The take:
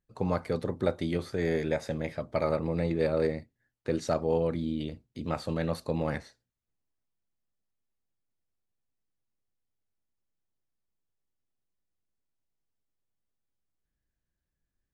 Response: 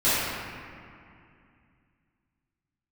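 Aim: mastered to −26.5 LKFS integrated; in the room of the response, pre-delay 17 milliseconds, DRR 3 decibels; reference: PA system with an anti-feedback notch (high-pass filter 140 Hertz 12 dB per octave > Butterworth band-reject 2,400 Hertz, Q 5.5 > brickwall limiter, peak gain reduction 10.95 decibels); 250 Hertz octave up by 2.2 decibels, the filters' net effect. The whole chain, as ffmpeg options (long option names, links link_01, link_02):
-filter_complex "[0:a]equalizer=frequency=250:width_type=o:gain=4,asplit=2[link_01][link_02];[1:a]atrim=start_sample=2205,adelay=17[link_03];[link_02][link_03]afir=irnorm=-1:irlink=0,volume=-20.5dB[link_04];[link_01][link_04]amix=inputs=2:normalize=0,highpass=140,asuperstop=centerf=2400:order=8:qfactor=5.5,volume=6.5dB,alimiter=limit=-17dB:level=0:latency=1"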